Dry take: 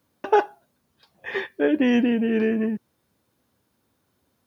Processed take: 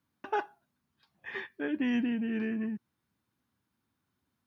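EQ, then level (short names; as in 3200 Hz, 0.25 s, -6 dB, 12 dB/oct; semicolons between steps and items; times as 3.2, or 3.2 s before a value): low shelf 120 Hz -8.5 dB; bell 520 Hz -14.5 dB 1.3 oct; high shelf 2600 Hz -10.5 dB; -3.5 dB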